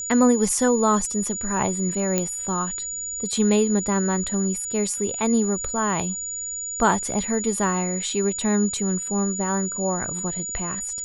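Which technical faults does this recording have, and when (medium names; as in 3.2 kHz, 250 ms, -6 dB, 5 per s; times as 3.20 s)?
whine 6.9 kHz -28 dBFS
2.18 s: pop -7 dBFS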